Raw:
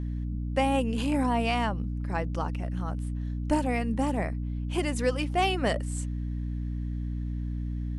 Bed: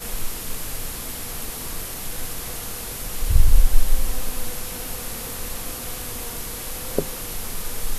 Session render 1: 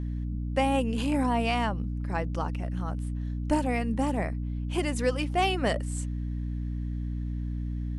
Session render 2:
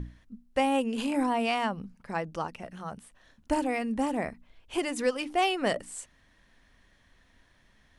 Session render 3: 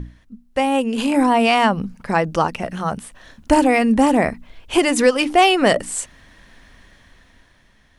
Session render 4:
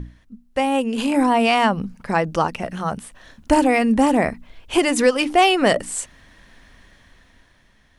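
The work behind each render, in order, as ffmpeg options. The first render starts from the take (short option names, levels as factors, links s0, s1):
-af anull
-af "bandreject=f=60:t=h:w=6,bandreject=f=120:t=h:w=6,bandreject=f=180:t=h:w=6,bandreject=f=240:t=h:w=6,bandreject=f=300:t=h:w=6"
-filter_complex "[0:a]dynaudnorm=f=220:g=11:m=3.16,asplit=2[s0][s1];[s1]alimiter=limit=0.224:level=0:latency=1:release=143,volume=1[s2];[s0][s2]amix=inputs=2:normalize=0"
-af "volume=0.841"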